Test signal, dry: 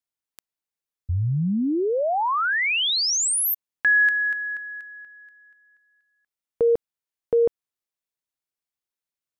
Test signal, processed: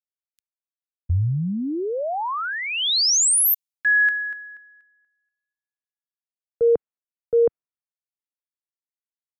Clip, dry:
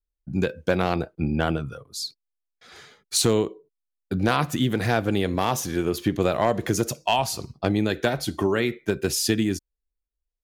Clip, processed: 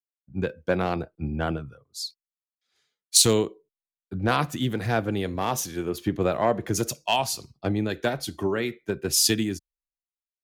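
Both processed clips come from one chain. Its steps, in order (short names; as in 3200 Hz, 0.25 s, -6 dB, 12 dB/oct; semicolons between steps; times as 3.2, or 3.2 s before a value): three-band expander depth 100%; gain -3 dB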